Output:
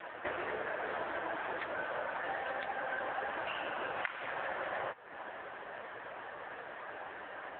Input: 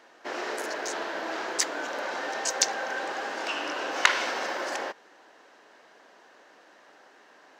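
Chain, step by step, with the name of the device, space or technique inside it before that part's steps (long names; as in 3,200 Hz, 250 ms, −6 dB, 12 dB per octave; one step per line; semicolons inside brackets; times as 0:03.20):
voicemail (band-pass filter 330–2,700 Hz; downward compressor 8 to 1, threshold −47 dBFS, peak gain reduction 30 dB; level +14.5 dB; AMR narrowband 5.9 kbit/s 8,000 Hz)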